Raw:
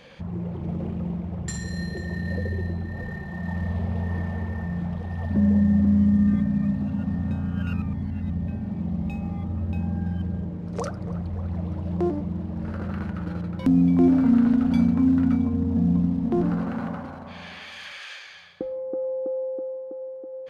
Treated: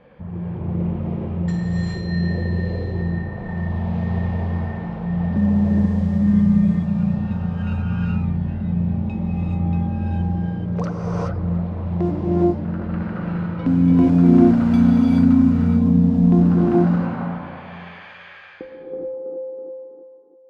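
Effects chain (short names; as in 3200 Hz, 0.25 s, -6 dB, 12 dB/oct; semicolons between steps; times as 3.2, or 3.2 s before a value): ending faded out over 2.88 s; low-pass opened by the level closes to 1200 Hz, open at -17.5 dBFS; non-linear reverb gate 0.45 s rising, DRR -4.5 dB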